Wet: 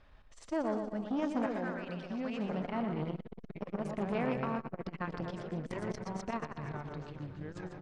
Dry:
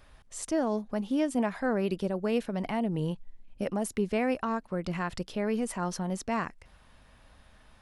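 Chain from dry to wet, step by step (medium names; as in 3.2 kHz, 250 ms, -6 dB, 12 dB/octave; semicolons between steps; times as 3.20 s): 1.46–2.44 s: high-pass 1.1 kHz 12 dB/octave; 5.36–6.28 s: compressor with a negative ratio -36 dBFS, ratio -0.5; distance through air 150 m; feedback delay 119 ms, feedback 60%, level -7 dB; ever faster or slower copies 786 ms, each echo -3 st, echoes 3, each echo -6 dB; transformer saturation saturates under 690 Hz; trim -3.5 dB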